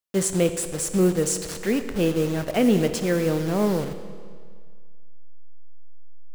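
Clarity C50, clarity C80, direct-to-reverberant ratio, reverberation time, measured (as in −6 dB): 9.5 dB, 10.5 dB, 9.0 dB, 1.9 s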